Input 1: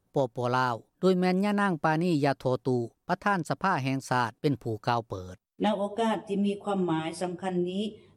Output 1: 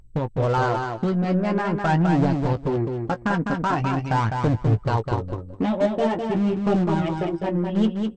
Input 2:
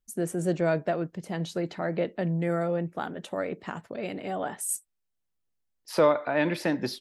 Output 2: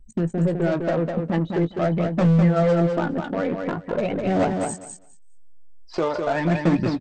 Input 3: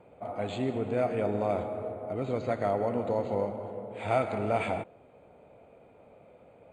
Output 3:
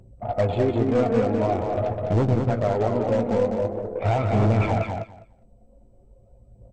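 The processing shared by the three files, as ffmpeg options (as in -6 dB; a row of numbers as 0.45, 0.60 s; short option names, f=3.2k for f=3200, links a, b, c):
-filter_complex "[0:a]anlmdn=2.51,lowpass=f=2.3k:p=1,lowshelf=f=170:g=11.5,alimiter=limit=-22dB:level=0:latency=1:release=272,acompressor=mode=upward:threshold=-52dB:ratio=2.5,aphaser=in_gain=1:out_gain=1:delay=4.5:decay=0.55:speed=0.45:type=triangular,asoftclip=type=hard:threshold=-24.5dB,aeval=exprs='0.0596*(cos(1*acos(clip(val(0)/0.0596,-1,1)))-cos(1*PI/2))+0.000531*(cos(2*acos(clip(val(0)/0.0596,-1,1)))-cos(2*PI/2))+0.00335*(cos(4*acos(clip(val(0)/0.0596,-1,1)))-cos(4*PI/2))+0.00133*(cos(6*acos(clip(val(0)/0.0596,-1,1)))-cos(6*PI/2))+0.0015*(cos(7*acos(clip(val(0)/0.0596,-1,1)))-cos(7*PI/2))':c=same,asplit=2[a][b];[b]adelay=18,volume=-11dB[c];[a][c]amix=inputs=2:normalize=0,aecho=1:1:204|408|612:0.562|0.0844|0.0127,volume=8dB" -ar 32000 -c:a mp2 -b:a 64k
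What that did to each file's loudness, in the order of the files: +5.5, +7.0, +8.0 LU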